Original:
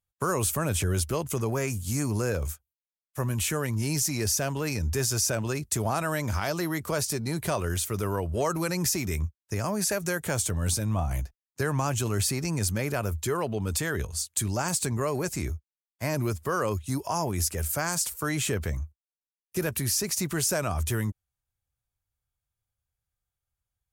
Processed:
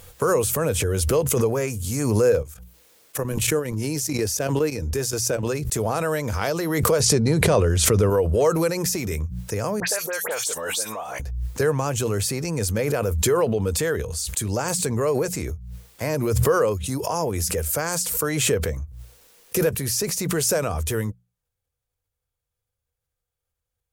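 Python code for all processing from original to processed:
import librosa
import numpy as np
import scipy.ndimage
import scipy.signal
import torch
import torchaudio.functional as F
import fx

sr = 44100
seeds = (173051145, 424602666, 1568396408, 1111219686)

y = fx.chain(x, sr, fx.highpass(hz=44.0, slope=12),
    fx.peak_eq(hz=310.0, db=6.0, octaves=0.3),
    fx.level_steps(step_db=14), at=(2.42, 5.43))
y = fx.chain(y, sr, fx.lowpass(hz=7600.0, slope=12),
    fx.low_shelf(hz=320.0, db=7.5),
    fx.env_flatten(amount_pct=100), at=(7.0, 8.1))
y = fx.chain(y, sr, fx.highpass(hz=670.0, slope=12),
    fx.dispersion(late='highs', ms=76.0, hz=2400.0), at=(9.8, 11.2))
y = fx.peak_eq(y, sr, hz=480.0, db=13.5, octaves=0.3)
y = fx.hum_notches(y, sr, base_hz=60, count=3)
y = fx.pre_swell(y, sr, db_per_s=30.0)
y = F.gain(torch.from_numpy(y), 1.5).numpy()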